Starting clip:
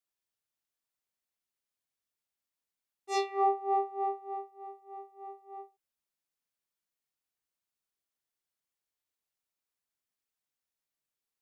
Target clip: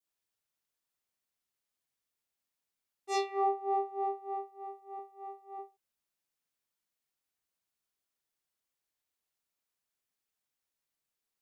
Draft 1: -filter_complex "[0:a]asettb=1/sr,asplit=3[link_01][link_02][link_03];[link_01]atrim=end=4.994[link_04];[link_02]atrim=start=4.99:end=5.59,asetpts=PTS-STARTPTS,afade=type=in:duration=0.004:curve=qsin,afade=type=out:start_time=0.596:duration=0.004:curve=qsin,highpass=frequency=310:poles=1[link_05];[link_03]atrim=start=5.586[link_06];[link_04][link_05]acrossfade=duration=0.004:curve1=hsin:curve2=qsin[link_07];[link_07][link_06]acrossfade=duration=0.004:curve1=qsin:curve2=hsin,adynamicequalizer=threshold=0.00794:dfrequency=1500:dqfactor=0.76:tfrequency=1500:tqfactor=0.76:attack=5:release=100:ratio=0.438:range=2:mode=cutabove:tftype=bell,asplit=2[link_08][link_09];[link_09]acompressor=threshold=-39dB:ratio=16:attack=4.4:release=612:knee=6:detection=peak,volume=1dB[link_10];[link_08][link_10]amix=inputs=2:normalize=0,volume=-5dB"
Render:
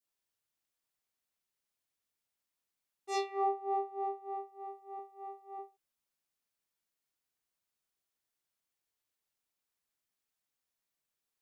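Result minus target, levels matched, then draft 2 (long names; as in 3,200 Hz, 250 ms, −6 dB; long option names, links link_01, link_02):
downward compressor: peak gain reduction +9.5 dB
-filter_complex "[0:a]asettb=1/sr,asplit=3[link_01][link_02][link_03];[link_01]atrim=end=4.994[link_04];[link_02]atrim=start=4.99:end=5.59,asetpts=PTS-STARTPTS,afade=type=in:duration=0.004:curve=qsin,afade=type=out:start_time=0.596:duration=0.004:curve=qsin,highpass=frequency=310:poles=1[link_05];[link_03]atrim=start=5.586[link_06];[link_04][link_05]acrossfade=duration=0.004:curve1=hsin:curve2=qsin[link_07];[link_07][link_06]acrossfade=duration=0.004:curve1=qsin:curve2=hsin,adynamicequalizer=threshold=0.00794:dfrequency=1500:dqfactor=0.76:tfrequency=1500:tqfactor=0.76:attack=5:release=100:ratio=0.438:range=2:mode=cutabove:tftype=bell,asplit=2[link_08][link_09];[link_09]acompressor=threshold=-29dB:ratio=16:attack=4.4:release=612:knee=6:detection=peak,volume=1dB[link_10];[link_08][link_10]amix=inputs=2:normalize=0,volume=-5dB"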